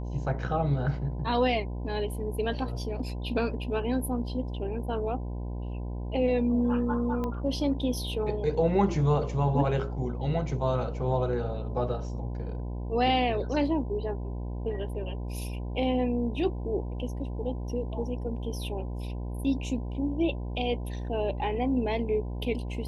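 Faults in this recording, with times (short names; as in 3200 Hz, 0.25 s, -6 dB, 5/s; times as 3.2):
buzz 60 Hz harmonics 17 -34 dBFS
7.24 pop -21 dBFS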